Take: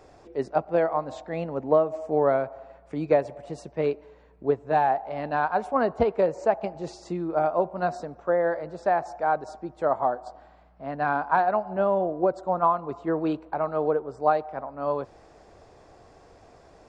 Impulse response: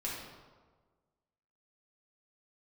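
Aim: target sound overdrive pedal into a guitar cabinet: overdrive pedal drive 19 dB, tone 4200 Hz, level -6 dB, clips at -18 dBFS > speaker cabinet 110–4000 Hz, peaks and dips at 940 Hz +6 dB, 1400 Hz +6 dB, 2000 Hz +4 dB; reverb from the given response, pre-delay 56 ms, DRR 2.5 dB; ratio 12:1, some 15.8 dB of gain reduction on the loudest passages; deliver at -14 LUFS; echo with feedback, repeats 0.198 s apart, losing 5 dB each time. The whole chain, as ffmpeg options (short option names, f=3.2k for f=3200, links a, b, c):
-filter_complex "[0:a]acompressor=threshold=-32dB:ratio=12,aecho=1:1:198|396|594|792|990|1188|1386:0.562|0.315|0.176|0.0988|0.0553|0.031|0.0173,asplit=2[a][b];[1:a]atrim=start_sample=2205,adelay=56[c];[b][c]afir=irnorm=-1:irlink=0,volume=-5dB[d];[a][d]amix=inputs=2:normalize=0,asplit=2[e][f];[f]highpass=f=720:p=1,volume=19dB,asoftclip=type=tanh:threshold=-18dB[g];[e][g]amix=inputs=2:normalize=0,lowpass=f=4.2k:p=1,volume=-6dB,highpass=110,equalizer=f=940:t=q:w=4:g=6,equalizer=f=1.4k:t=q:w=4:g=6,equalizer=f=2k:t=q:w=4:g=4,lowpass=f=4k:w=0.5412,lowpass=f=4k:w=1.3066,volume=12dB"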